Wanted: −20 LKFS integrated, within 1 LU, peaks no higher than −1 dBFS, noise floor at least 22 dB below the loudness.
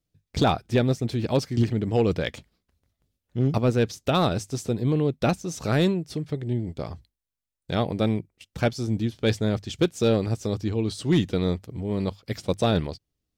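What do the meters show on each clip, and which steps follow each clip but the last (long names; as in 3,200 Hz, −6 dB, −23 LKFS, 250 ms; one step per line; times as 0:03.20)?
share of clipped samples 0.5%; peaks flattened at −13.0 dBFS; integrated loudness −25.5 LKFS; sample peak −13.0 dBFS; target loudness −20.0 LKFS
→ clipped peaks rebuilt −13 dBFS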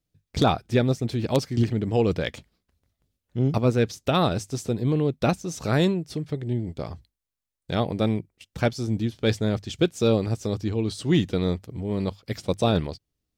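share of clipped samples 0.0%; integrated loudness −25.5 LKFS; sample peak −4.0 dBFS; target loudness −20.0 LKFS
→ level +5.5 dB
brickwall limiter −1 dBFS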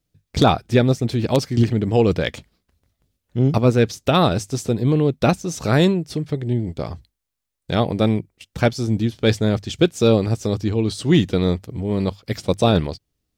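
integrated loudness −20.0 LKFS; sample peak −1.0 dBFS; background noise floor −79 dBFS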